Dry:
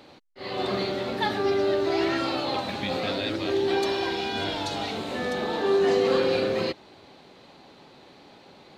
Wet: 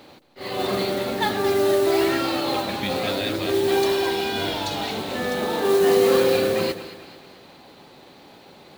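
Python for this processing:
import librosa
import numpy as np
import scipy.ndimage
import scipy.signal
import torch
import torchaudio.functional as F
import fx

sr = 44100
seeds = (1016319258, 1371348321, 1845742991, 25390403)

y = fx.echo_split(x, sr, split_hz=730.0, low_ms=157, high_ms=218, feedback_pct=52, wet_db=-12.5)
y = fx.mod_noise(y, sr, seeds[0], snr_db=18)
y = F.gain(torch.from_numpy(y), 3.0).numpy()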